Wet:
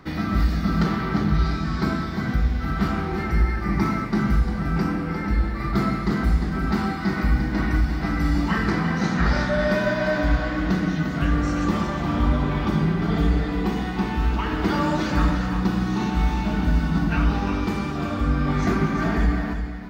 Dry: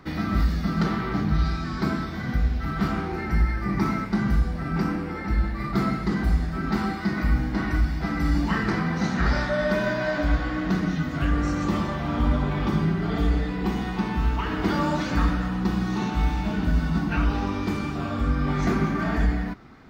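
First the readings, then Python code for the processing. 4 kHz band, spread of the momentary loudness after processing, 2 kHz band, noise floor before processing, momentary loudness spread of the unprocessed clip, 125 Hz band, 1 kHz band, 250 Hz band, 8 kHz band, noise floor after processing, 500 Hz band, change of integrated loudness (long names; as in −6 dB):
+2.0 dB, 3 LU, +2.0 dB, −31 dBFS, 3 LU, +2.0 dB, +2.0 dB, +2.5 dB, can't be measured, −28 dBFS, +2.5 dB, +2.0 dB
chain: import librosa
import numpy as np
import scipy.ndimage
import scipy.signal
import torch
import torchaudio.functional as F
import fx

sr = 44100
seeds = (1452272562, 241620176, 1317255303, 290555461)

y = x + 10.0 ** (-8.0 / 20.0) * np.pad(x, (int(350 * sr / 1000.0), 0))[:len(x)]
y = y * librosa.db_to_amplitude(1.5)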